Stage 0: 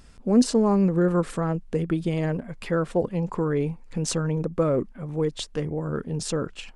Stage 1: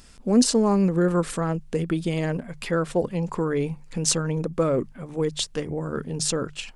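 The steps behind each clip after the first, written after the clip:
high-shelf EQ 2,600 Hz +8.5 dB
mains-hum notches 50/100/150 Hz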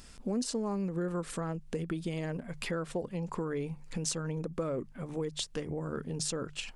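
downward compressor 3 to 1, threshold −32 dBFS, peak gain reduction 14 dB
level −2 dB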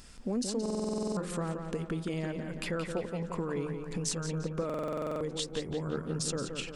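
feedback echo with a low-pass in the loop 174 ms, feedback 58%, low-pass 4,700 Hz, level −6 dB
buffer that repeats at 0:00.61/0:04.65, samples 2,048, times 11

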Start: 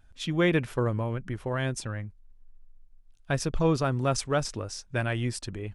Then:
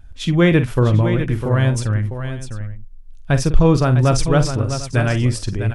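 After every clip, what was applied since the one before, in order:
low-shelf EQ 170 Hz +11 dB
on a send: multi-tap delay 47/652/746 ms −11/−9/−17.5 dB
on the sum: level +7 dB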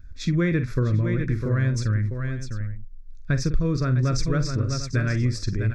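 downward compressor 3 to 1, threshold −17 dBFS, peak gain reduction 9.5 dB
phaser with its sweep stopped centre 3,000 Hz, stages 6
level −1.5 dB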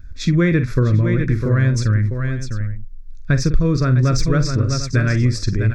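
de-essing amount 55%
level +6.5 dB

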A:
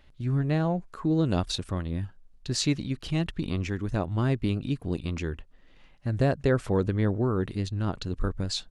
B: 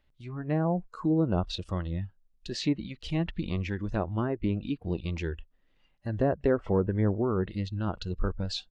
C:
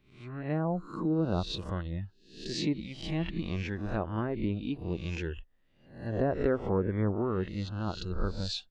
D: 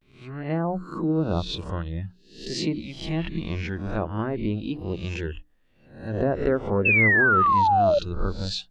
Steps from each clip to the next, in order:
treble cut that deepens with the level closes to 1,300 Hz, closed at −20 dBFS; noise reduction from a noise print of the clip's start 13 dB; high-shelf EQ 8,700 Hz −6.5 dB
peak hold with a rise ahead of every peak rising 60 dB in 0.53 s; level −3.5 dB
pitch vibrato 0.47 Hz 75 cents; sound drawn into the spectrogram fall, 0:06.85–0:07.99, 560–2,700 Hz −24 dBFS; mains-hum notches 60/120/180/240/300 Hz; level +5 dB

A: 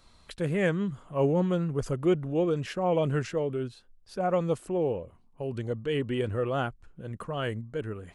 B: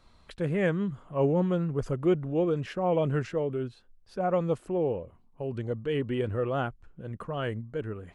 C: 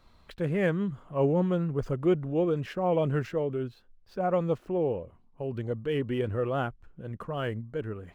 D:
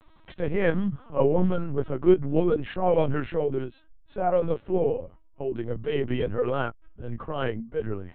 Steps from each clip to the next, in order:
high-shelf EQ 4,300 Hz −10.5 dB
running median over 5 samples
flanger 0.76 Hz, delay 9.3 ms, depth 9.1 ms, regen +19%; linear-prediction vocoder at 8 kHz pitch kept; level +7 dB

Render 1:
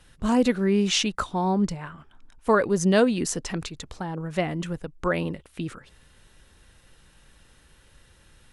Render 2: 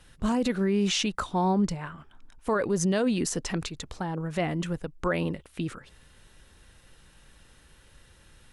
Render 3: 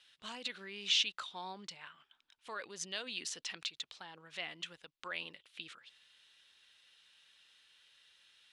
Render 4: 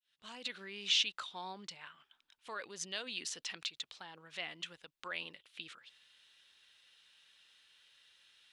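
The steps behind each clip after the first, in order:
brickwall limiter −17.5 dBFS, peak gain reduction 9 dB
resonant band-pass 3,400 Hz, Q 2.1; level +1 dB
fade in at the beginning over 0.50 s

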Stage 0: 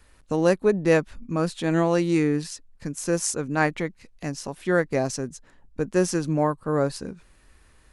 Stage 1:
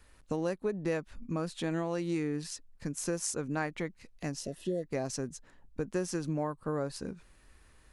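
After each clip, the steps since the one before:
downward compressor 4 to 1, threshold −26 dBFS, peak gain reduction 10.5 dB
healed spectral selection 0:04.41–0:04.81, 690–2,500 Hz
level −4 dB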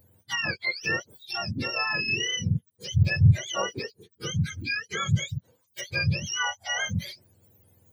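frequency axis turned over on the octave scale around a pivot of 940 Hz
noise reduction from a noise print of the clip's start 10 dB
level +7.5 dB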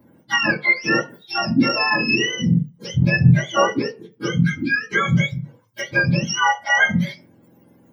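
convolution reverb RT60 0.35 s, pre-delay 3 ms, DRR −7.5 dB
level −4 dB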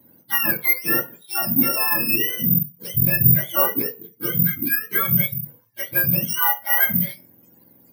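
in parallel at −5 dB: soft clipping −15 dBFS, distortion −11 dB
on the sum: bad sample-rate conversion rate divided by 3×, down none, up zero stuff
level −9 dB

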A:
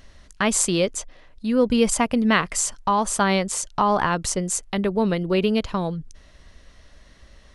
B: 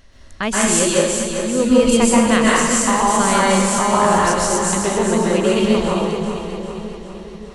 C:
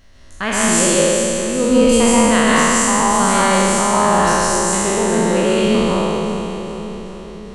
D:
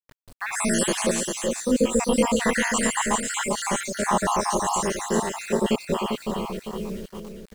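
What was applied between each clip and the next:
on a send: echo with a time of its own for lows and highs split 460 Hz, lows 568 ms, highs 397 ms, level −7.5 dB; on the sum: dense smooth reverb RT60 1.1 s, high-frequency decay 0.85×, pre-delay 115 ms, DRR −5.5 dB; level −1 dB
peak hold with a decay on every bin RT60 2.52 s; level −2.5 dB
time-frequency cells dropped at random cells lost 68%; bit reduction 7 bits; single-tap delay 398 ms −5.5 dB; level −5.5 dB

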